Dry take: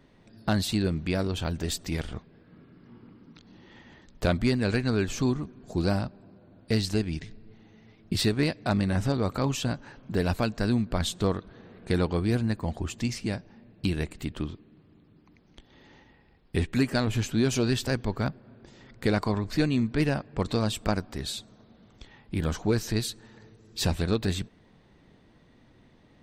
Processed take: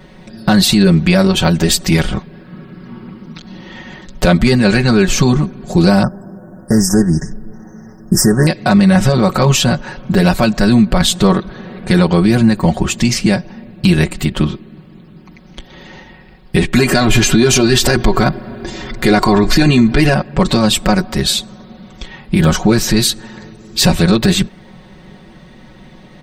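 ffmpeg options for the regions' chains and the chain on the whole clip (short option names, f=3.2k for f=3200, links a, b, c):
-filter_complex "[0:a]asettb=1/sr,asplit=3[a][b][c];[a]atrim=end=6.034[d];[b]atrim=start=6.03:end=8.47,asetpts=PTS-STARTPTS,afade=t=in:d=0.004:c=qsin,afade=t=out:st=2.436:d=0.004:c=qsin,asuperstop=centerf=3100:order=20:qfactor=0.93,highshelf=f=5k:g=5.5[e];[c]atrim=start=8.466[f];[d][e]acrossfade=d=0.004:c1=hsin:c2=qsin[g];[g][f]acrossfade=d=0.004:c1=qsin:c2=hsin,asettb=1/sr,asplit=3[h][i][j];[h]atrim=end=16.744[k];[i]atrim=start=16.74:end=20.14,asetpts=PTS-STARTPTS,afade=t=in:d=0.004:c=qsin,afade=t=out:st=3.396:d=0.004:c=qsin,aecho=1:1:2.9:0.44,atrim=end_sample=149940,acontrast=53[l];[j]atrim=start=20.136[m];[k][l]acrossfade=d=0.004:c1=hsin:c2=qsin[n];[n][m]acrossfade=d=0.004:c1=qsin:c2=hsin,bandreject=f=370:w=12,aecho=1:1:5.4:0.86,alimiter=level_in=18dB:limit=-1dB:release=50:level=0:latency=1,volume=-1dB"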